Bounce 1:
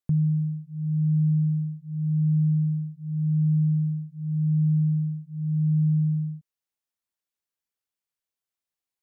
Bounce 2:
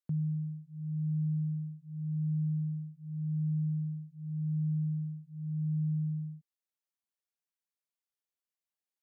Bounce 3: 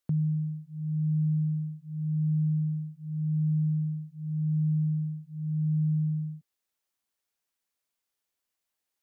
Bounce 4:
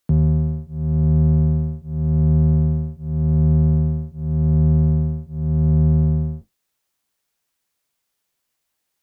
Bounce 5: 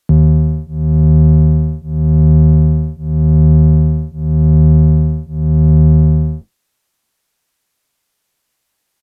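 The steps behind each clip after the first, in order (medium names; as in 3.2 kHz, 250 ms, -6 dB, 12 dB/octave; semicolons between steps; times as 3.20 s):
high-pass 150 Hz; trim -7 dB
peaking EQ 160 Hz -3.5 dB; trim +8.5 dB
octave divider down 1 oct, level -2 dB; trim +9 dB
resampled via 32 kHz; trim +7.5 dB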